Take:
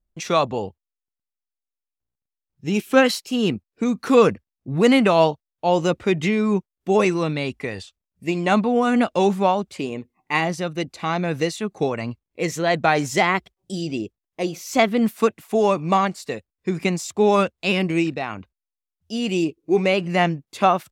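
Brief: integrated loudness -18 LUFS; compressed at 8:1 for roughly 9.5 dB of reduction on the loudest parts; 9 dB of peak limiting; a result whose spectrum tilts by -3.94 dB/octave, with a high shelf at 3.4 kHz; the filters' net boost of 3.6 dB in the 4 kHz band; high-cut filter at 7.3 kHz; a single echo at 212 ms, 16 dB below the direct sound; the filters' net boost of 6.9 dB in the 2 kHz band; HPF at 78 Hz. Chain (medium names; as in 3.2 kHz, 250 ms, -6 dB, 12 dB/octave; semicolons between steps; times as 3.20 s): high-pass 78 Hz; low-pass 7.3 kHz; peaking EQ 2 kHz +8.5 dB; treble shelf 3.4 kHz -3.5 dB; peaking EQ 4 kHz +3.5 dB; compression 8:1, threshold -18 dBFS; peak limiter -14.5 dBFS; delay 212 ms -16 dB; trim +8.5 dB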